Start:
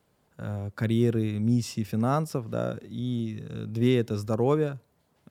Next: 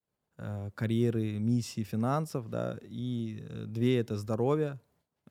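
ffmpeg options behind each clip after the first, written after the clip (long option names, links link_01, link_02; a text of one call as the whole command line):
ffmpeg -i in.wav -af "agate=range=-33dB:threshold=-59dB:ratio=3:detection=peak,volume=-4.5dB" out.wav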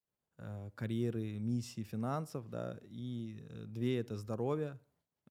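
ffmpeg -i in.wav -filter_complex "[0:a]asplit=2[link_01][link_02];[link_02]adelay=66,lowpass=frequency=3200:poles=1,volume=-23.5dB,asplit=2[link_03][link_04];[link_04]adelay=66,lowpass=frequency=3200:poles=1,volume=0.41,asplit=2[link_05][link_06];[link_06]adelay=66,lowpass=frequency=3200:poles=1,volume=0.41[link_07];[link_01][link_03][link_05][link_07]amix=inputs=4:normalize=0,volume=-7.5dB" out.wav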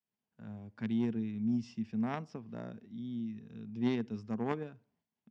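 ffmpeg -i in.wav -af "aeval=exprs='0.075*(cos(1*acos(clip(val(0)/0.075,-1,1)))-cos(1*PI/2))+0.0237*(cos(3*acos(clip(val(0)/0.075,-1,1)))-cos(3*PI/2))+0.00473*(cos(5*acos(clip(val(0)/0.075,-1,1)))-cos(5*PI/2))':channel_layout=same,highpass=110,equalizer=frequency=140:width_type=q:width=4:gain=-6,equalizer=frequency=220:width_type=q:width=4:gain=9,equalizer=frequency=330:width_type=q:width=4:gain=-4,equalizer=frequency=540:width_type=q:width=4:gain=-9,equalizer=frequency=1300:width_type=q:width=4:gain=-7,equalizer=frequency=4000:width_type=q:width=4:gain=-7,lowpass=frequency=5100:width=0.5412,lowpass=frequency=5100:width=1.3066,volume=8.5dB" out.wav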